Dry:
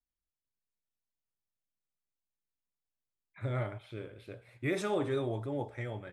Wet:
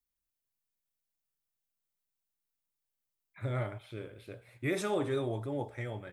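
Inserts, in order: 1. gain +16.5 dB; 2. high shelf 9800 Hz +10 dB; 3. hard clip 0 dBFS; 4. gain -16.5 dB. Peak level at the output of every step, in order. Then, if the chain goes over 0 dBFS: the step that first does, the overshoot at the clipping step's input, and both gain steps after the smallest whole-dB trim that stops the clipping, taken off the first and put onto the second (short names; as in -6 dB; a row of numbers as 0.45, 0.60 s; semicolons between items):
-5.0, -4.5, -4.5, -21.0 dBFS; no overload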